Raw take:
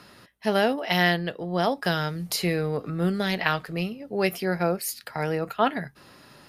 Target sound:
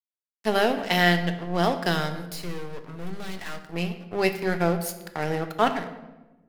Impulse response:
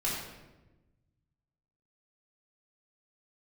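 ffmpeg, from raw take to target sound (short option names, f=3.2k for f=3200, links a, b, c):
-filter_complex "[0:a]aeval=exprs='sgn(val(0))*max(abs(val(0))-0.0188,0)':c=same,asettb=1/sr,asplit=3[a][b][c];[a]atrim=end=2.294[d];[b]atrim=start=2.29:end=3.67,asetpts=PTS-STARTPTS,afade=t=in:d=0.004:c=qsin,afade=t=out:st=1.376:d=0.004:c=qsin,aeval=exprs='(tanh(56.2*val(0)+0.5)-tanh(0.5))/56.2':c=same[e];[c]atrim=start=3.666[f];[d][e]acrossfade=d=0.004:c1=hsin:c2=qsin[g];[g][f]acrossfade=d=0.004:c1=qsin:c2=hsin,asplit=2[h][i];[1:a]atrim=start_sample=2205[j];[i][j]afir=irnorm=-1:irlink=0,volume=-12dB[k];[h][k]amix=inputs=2:normalize=0"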